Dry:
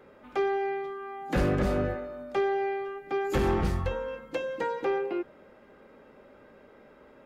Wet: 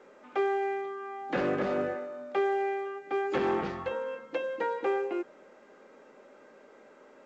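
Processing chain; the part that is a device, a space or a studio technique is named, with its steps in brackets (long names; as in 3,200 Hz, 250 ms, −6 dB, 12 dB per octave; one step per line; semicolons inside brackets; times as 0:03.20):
telephone (band-pass filter 280–3,400 Hz; A-law companding 128 kbit/s 16,000 Hz)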